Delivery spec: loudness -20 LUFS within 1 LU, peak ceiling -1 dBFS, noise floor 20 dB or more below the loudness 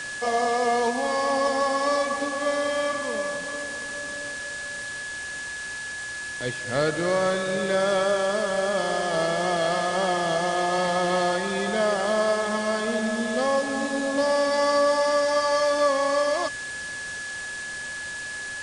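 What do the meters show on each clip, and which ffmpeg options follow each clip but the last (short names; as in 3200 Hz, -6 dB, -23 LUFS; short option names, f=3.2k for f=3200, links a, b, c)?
steady tone 1700 Hz; tone level -32 dBFS; noise floor -34 dBFS; noise floor target -45 dBFS; loudness -25.0 LUFS; peak -11.0 dBFS; loudness target -20.0 LUFS
-> -af "bandreject=f=1.7k:w=30"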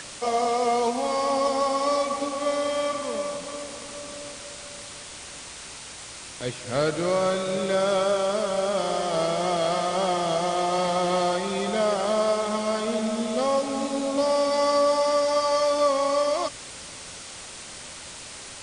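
steady tone none; noise floor -41 dBFS; noise floor target -45 dBFS
-> -af "afftdn=nr=6:nf=-41"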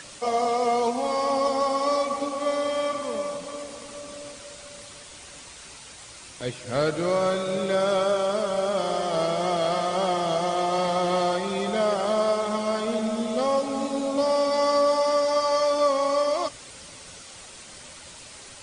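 noise floor -44 dBFS; noise floor target -45 dBFS
-> -af "afftdn=nr=6:nf=-44"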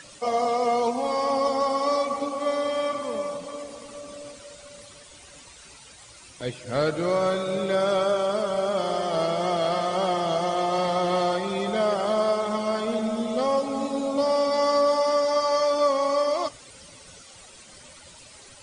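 noise floor -48 dBFS; loudness -24.5 LUFS; peak -12.0 dBFS; loudness target -20.0 LUFS
-> -af "volume=4.5dB"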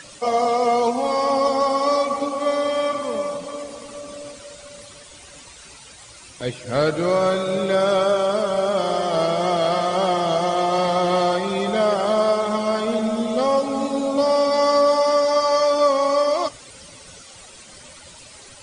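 loudness -20.0 LUFS; peak -7.5 dBFS; noise floor -44 dBFS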